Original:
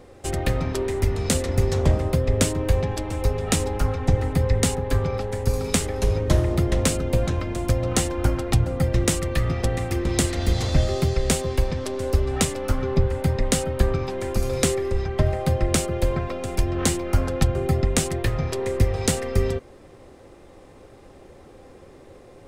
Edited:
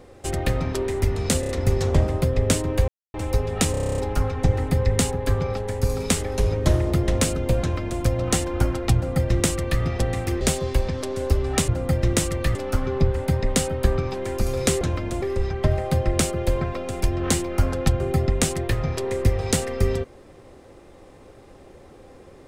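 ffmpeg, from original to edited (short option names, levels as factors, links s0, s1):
-filter_complex "[0:a]asplit=20[s0][s1][s2][s3][s4][s5][s6][s7][s8][s9][s10][s11][s12][s13][s14][s15][s16][s17][s18][s19];[s0]atrim=end=1.432[s20];[s1]atrim=start=1.398:end=1.432[s21];[s2]atrim=start=1.398:end=1.432[s22];[s3]atrim=start=1.398:end=2.79,asetpts=PTS-STARTPTS,afade=t=out:st=1.388:d=0.004:c=hsin[s23];[s4]atrim=start=2.79:end=3.05,asetpts=PTS-STARTPTS,volume=0[s24];[s5]atrim=start=3.05:end=3.652,asetpts=PTS-STARTPTS,afade=t=in:d=0.004:c=hsin[s25];[s6]atrim=start=3.618:end=3.652[s26];[s7]atrim=start=3.618:end=3.652[s27];[s8]atrim=start=3.618:end=3.652[s28];[s9]atrim=start=3.618:end=3.652[s29];[s10]atrim=start=3.618:end=3.652[s30];[s11]atrim=start=3.618:end=3.652[s31];[s12]atrim=start=3.618:end=3.652[s32];[s13]atrim=start=3.618:end=3.652[s33];[s14]atrim=start=3.618:end=10.052[s34];[s15]atrim=start=11.238:end=12.512[s35];[s16]atrim=start=8.588:end=9.462[s36];[s17]atrim=start=12.508:end=14.772[s37];[s18]atrim=start=7.248:end=7.662[s38];[s19]atrim=start=14.768[s39];[s20][s21]acrossfade=d=0.004:c1=hsin:c2=hsin[s40];[s40][s22]acrossfade=d=0.004:c1=hsin:c2=hsin[s41];[s23][s24][s25]concat=n=3:v=0:a=1[s42];[s41][s42]acrossfade=d=0.004:c1=hsin:c2=hsin[s43];[s43][s26]acrossfade=d=0.004:c1=hsin:c2=hsin[s44];[s44][s27]acrossfade=d=0.004:c1=hsin:c2=hsin[s45];[s45][s28]acrossfade=d=0.004:c1=hsin:c2=hsin[s46];[s46][s29]acrossfade=d=0.004:c1=hsin:c2=hsin[s47];[s47][s30]acrossfade=d=0.004:c1=hsin:c2=hsin[s48];[s48][s31]acrossfade=d=0.004:c1=hsin:c2=hsin[s49];[s49][s32]acrossfade=d=0.004:c1=hsin:c2=hsin[s50];[s50][s33]acrossfade=d=0.004:c1=hsin:c2=hsin[s51];[s51][s34]acrossfade=d=0.004:c1=hsin:c2=hsin[s52];[s52][s35]acrossfade=d=0.004:c1=hsin:c2=hsin[s53];[s53][s36]acrossfade=d=0.004:c1=hsin:c2=hsin[s54];[s54][s37]acrossfade=d=0.004:c1=hsin:c2=hsin[s55];[s55][s38]acrossfade=d=0.004:c1=hsin:c2=hsin[s56];[s56][s39]acrossfade=d=0.004:c1=hsin:c2=hsin"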